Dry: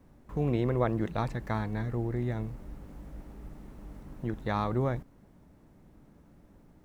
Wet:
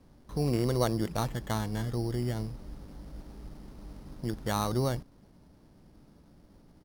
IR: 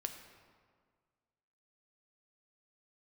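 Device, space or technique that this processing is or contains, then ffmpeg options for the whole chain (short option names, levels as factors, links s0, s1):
crushed at another speed: -af "asetrate=55125,aresample=44100,acrusher=samples=7:mix=1:aa=0.000001,asetrate=35280,aresample=44100"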